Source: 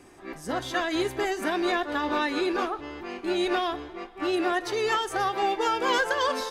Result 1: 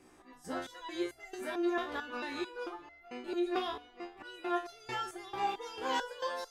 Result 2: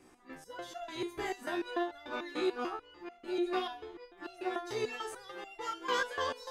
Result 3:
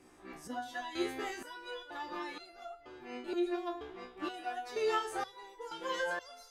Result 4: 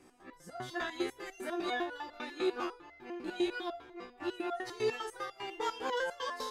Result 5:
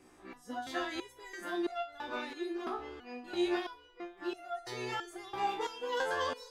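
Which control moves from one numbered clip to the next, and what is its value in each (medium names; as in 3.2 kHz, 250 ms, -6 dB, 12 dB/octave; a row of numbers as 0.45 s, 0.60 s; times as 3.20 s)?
resonator arpeggio, rate: 4.5 Hz, 6.8 Hz, 2.1 Hz, 10 Hz, 3 Hz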